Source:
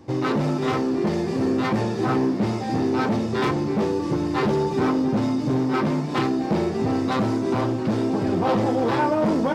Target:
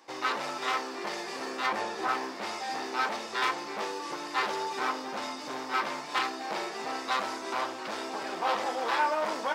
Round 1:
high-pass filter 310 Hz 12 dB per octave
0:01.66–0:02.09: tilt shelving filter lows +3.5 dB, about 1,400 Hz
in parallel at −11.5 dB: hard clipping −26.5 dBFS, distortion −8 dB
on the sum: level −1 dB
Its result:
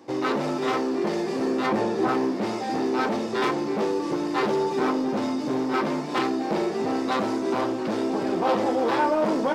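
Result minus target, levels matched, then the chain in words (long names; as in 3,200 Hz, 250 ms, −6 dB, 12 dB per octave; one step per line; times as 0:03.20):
250 Hz band +10.5 dB
high-pass filter 1,000 Hz 12 dB per octave
0:01.66–0:02.09: tilt shelving filter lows +3.5 dB, about 1,400 Hz
in parallel at −11.5 dB: hard clipping −26.5 dBFS, distortion −13 dB
on the sum: level −1 dB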